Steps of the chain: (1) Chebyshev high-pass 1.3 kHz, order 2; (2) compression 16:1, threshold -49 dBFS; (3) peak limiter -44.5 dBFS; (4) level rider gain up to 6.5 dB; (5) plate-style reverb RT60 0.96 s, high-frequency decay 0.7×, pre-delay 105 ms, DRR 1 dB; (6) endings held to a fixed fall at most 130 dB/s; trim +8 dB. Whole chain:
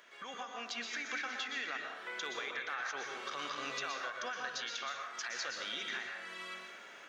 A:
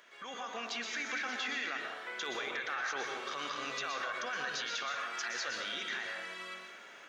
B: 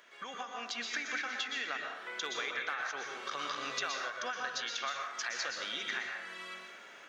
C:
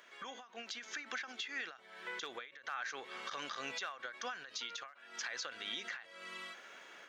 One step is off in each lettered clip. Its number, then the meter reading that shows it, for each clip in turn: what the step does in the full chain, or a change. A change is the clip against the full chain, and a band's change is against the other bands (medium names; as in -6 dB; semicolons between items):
2, mean gain reduction 9.5 dB; 3, crest factor change +2.5 dB; 5, loudness change -3.5 LU